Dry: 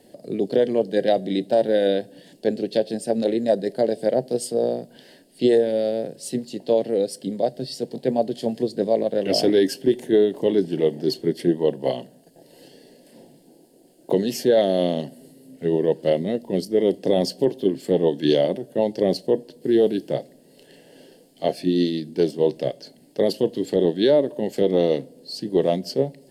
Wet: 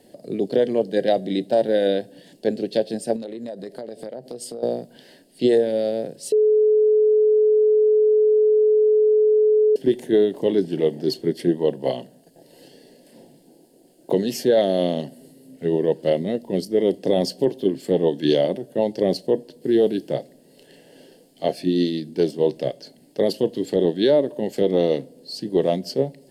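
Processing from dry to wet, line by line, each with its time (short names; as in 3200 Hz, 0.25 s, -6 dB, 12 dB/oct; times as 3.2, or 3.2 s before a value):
3.16–4.63 compressor 10:1, threshold -29 dBFS
6.32–9.76 bleep 428 Hz -13 dBFS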